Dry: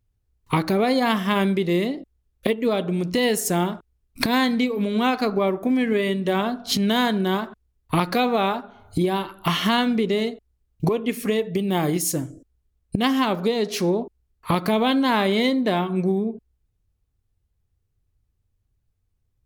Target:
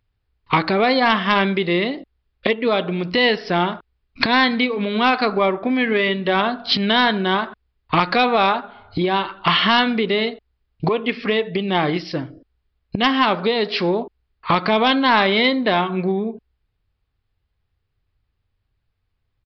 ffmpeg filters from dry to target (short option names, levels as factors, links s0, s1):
-af "lowpass=f=1900:p=1,tiltshelf=f=800:g=-8,aresample=11025,aeval=exprs='0.562*sin(PI/2*1.41*val(0)/0.562)':c=same,aresample=44100"